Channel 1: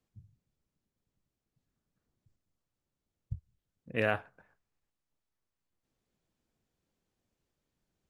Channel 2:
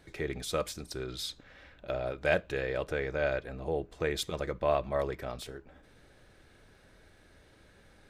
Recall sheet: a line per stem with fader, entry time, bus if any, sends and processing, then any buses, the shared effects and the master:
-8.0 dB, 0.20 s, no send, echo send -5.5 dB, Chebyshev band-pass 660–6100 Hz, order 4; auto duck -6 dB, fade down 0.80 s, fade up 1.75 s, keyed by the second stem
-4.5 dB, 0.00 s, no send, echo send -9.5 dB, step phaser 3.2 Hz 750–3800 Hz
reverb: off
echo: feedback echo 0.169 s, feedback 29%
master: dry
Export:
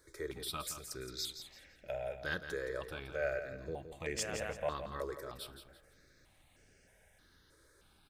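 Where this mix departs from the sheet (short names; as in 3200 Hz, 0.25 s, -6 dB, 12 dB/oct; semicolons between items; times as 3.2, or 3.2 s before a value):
stem 1: missing Chebyshev band-pass 660–6100 Hz, order 4; master: extra tone controls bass -4 dB, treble +9 dB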